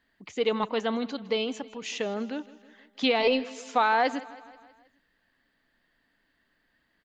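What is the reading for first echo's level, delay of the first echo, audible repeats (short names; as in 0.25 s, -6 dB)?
-19.0 dB, 0.16 s, 4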